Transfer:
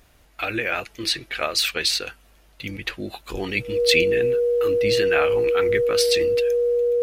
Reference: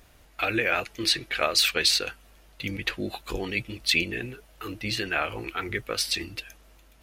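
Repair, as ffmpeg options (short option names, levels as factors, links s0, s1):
-af "bandreject=f=480:w=30,asetnsamples=n=441:p=0,asendcmd='3.37 volume volume -4dB',volume=1"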